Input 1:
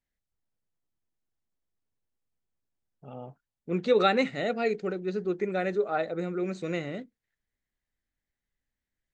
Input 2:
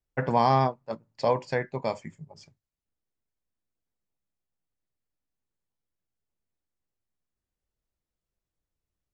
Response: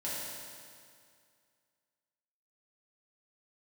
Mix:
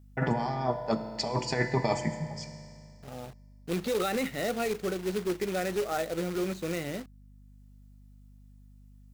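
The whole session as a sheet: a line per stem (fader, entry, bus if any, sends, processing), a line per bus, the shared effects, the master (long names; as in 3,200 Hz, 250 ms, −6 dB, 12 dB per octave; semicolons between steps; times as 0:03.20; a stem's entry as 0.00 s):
−0.5 dB, 0.00 s, no send, brickwall limiter −21 dBFS, peak gain reduction 10.5 dB; log-companded quantiser 4 bits
+2.0 dB, 0.00 s, send −9.5 dB, high-shelf EQ 6,000 Hz +8.5 dB; compressor whose output falls as the input rises −31 dBFS, ratio −1; notch comb filter 540 Hz; automatic ducking −10 dB, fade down 1.00 s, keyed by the first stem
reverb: on, RT60 2.2 s, pre-delay 3 ms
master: mains hum 50 Hz, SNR 21 dB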